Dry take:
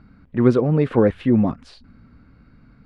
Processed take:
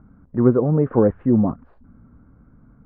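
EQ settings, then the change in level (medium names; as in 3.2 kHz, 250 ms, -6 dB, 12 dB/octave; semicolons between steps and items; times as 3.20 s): low-pass 1.3 kHz 24 dB/octave; 0.0 dB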